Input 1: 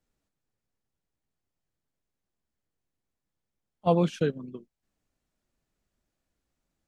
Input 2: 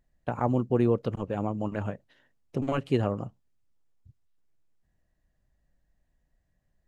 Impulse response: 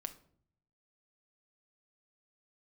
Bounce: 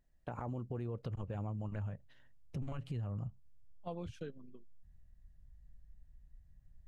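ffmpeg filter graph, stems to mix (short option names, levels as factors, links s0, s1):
-filter_complex "[0:a]volume=0.158[s0];[1:a]asubboost=boost=11:cutoff=120,alimiter=limit=0.0794:level=0:latency=1:release=33,volume=0.596[s1];[s0][s1]amix=inputs=2:normalize=0,acompressor=threshold=0.0112:ratio=3"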